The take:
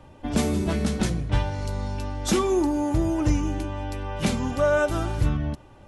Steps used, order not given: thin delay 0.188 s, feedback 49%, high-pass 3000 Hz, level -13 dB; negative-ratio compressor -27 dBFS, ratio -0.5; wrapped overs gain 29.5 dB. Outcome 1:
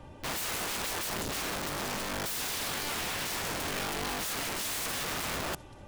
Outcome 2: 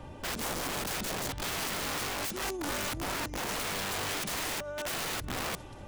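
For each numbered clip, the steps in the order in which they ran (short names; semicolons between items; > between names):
thin delay > wrapped overs > negative-ratio compressor; thin delay > negative-ratio compressor > wrapped overs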